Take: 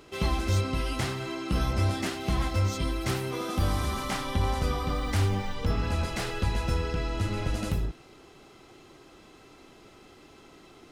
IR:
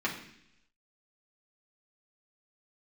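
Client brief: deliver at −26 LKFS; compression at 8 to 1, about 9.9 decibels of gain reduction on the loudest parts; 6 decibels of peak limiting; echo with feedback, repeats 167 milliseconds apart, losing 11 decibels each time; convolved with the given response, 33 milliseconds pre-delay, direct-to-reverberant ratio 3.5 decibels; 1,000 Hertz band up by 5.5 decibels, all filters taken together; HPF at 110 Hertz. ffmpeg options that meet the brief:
-filter_complex "[0:a]highpass=110,equalizer=frequency=1000:width_type=o:gain=7,acompressor=threshold=-34dB:ratio=8,alimiter=level_in=5.5dB:limit=-24dB:level=0:latency=1,volume=-5.5dB,aecho=1:1:167|334|501:0.282|0.0789|0.0221,asplit=2[link_01][link_02];[1:a]atrim=start_sample=2205,adelay=33[link_03];[link_02][link_03]afir=irnorm=-1:irlink=0,volume=-11.5dB[link_04];[link_01][link_04]amix=inputs=2:normalize=0,volume=11dB"

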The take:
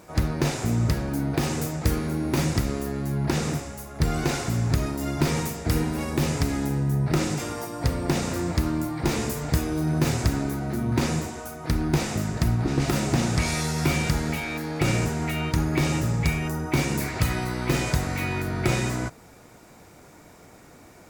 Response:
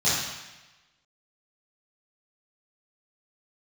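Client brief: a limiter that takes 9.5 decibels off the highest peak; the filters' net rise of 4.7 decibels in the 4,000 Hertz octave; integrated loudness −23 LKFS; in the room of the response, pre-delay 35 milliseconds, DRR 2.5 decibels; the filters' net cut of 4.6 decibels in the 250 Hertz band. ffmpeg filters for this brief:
-filter_complex "[0:a]equalizer=frequency=250:width_type=o:gain=-7,equalizer=frequency=4000:width_type=o:gain=6,alimiter=limit=-19dB:level=0:latency=1,asplit=2[link_01][link_02];[1:a]atrim=start_sample=2205,adelay=35[link_03];[link_02][link_03]afir=irnorm=-1:irlink=0,volume=-17dB[link_04];[link_01][link_04]amix=inputs=2:normalize=0,volume=3dB"

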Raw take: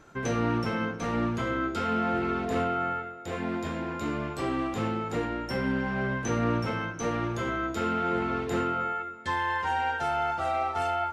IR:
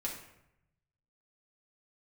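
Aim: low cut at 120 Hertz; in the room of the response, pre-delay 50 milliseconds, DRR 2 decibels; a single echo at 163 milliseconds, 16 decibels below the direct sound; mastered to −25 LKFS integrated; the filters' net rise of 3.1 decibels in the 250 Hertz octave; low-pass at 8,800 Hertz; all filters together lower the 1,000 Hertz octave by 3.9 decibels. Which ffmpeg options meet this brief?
-filter_complex "[0:a]highpass=120,lowpass=8800,equalizer=frequency=250:width_type=o:gain=4.5,equalizer=frequency=1000:width_type=o:gain=-6,aecho=1:1:163:0.158,asplit=2[link_01][link_02];[1:a]atrim=start_sample=2205,adelay=50[link_03];[link_02][link_03]afir=irnorm=-1:irlink=0,volume=-3.5dB[link_04];[link_01][link_04]amix=inputs=2:normalize=0,volume=1.5dB"

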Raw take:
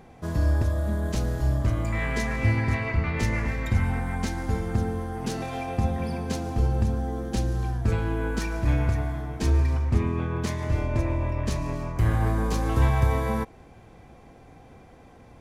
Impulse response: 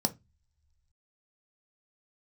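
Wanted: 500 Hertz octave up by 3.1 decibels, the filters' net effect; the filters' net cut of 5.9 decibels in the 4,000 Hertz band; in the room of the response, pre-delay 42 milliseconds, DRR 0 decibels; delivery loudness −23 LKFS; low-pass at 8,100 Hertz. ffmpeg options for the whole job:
-filter_complex "[0:a]lowpass=8100,equalizer=frequency=500:width_type=o:gain=4,equalizer=frequency=4000:width_type=o:gain=-7.5,asplit=2[link_01][link_02];[1:a]atrim=start_sample=2205,adelay=42[link_03];[link_02][link_03]afir=irnorm=-1:irlink=0,volume=-5.5dB[link_04];[link_01][link_04]amix=inputs=2:normalize=0,volume=-3dB"

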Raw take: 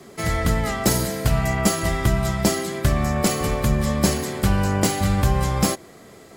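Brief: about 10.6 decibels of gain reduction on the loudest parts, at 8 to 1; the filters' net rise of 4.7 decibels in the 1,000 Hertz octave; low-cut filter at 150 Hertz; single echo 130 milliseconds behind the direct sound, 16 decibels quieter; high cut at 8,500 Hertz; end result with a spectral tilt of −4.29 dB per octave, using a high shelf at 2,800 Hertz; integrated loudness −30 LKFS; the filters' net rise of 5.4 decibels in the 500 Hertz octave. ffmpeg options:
ffmpeg -i in.wav -af "highpass=150,lowpass=8500,equalizer=frequency=500:width_type=o:gain=6,equalizer=frequency=1000:width_type=o:gain=3.5,highshelf=frequency=2800:gain=5,acompressor=threshold=-23dB:ratio=8,aecho=1:1:130:0.158,volume=-3dB" out.wav

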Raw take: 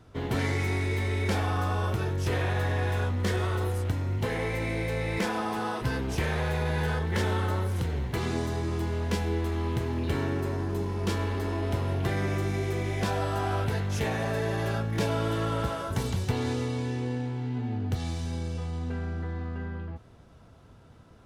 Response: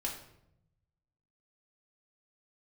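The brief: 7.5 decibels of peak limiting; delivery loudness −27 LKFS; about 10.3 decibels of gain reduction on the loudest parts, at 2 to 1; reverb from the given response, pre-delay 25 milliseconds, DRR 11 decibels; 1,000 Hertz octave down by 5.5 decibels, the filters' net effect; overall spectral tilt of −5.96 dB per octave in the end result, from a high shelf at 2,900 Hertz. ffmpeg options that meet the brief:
-filter_complex "[0:a]equalizer=frequency=1000:width_type=o:gain=-8,highshelf=frequency=2900:gain=4,acompressor=threshold=-43dB:ratio=2,alimiter=level_in=8dB:limit=-24dB:level=0:latency=1,volume=-8dB,asplit=2[link_01][link_02];[1:a]atrim=start_sample=2205,adelay=25[link_03];[link_02][link_03]afir=irnorm=-1:irlink=0,volume=-13dB[link_04];[link_01][link_04]amix=inputs=2:normalize=0,volume=13.5dB"

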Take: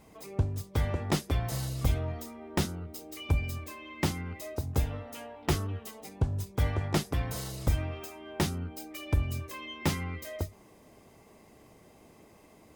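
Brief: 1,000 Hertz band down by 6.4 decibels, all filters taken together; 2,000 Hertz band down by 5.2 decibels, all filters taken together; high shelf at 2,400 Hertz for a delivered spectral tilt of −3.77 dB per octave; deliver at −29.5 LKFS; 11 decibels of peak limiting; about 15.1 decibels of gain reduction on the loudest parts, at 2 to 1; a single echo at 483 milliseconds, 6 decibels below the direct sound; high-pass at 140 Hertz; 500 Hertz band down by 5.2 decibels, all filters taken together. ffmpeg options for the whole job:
ffmpeg -i in.wav -af "highpass=140,equalizer=frequency=500:width_type=o:gain=-5.5,equalizer=frequency=1000:width_type=o:gain=-5.5,equalizer=frequency=2000:width_type=o:gain=-6.5,highshelf=frequency=2400:gain=3.5,acompressor=threshold=-55dB:ratio=2,alimiter=level_in=15.5dB:limit=-24dB:level=0:latency=1,volume=-15.5dB,aecho=1:1:483:0.501,volume=21.5dB" out.wav

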